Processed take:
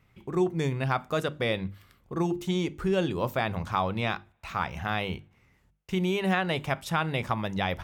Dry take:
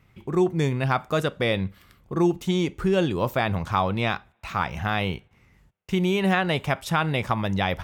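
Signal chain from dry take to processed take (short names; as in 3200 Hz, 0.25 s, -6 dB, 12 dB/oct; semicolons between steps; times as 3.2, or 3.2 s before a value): notches 50/100/150/200/250/300/350 Hz; gain -4 dB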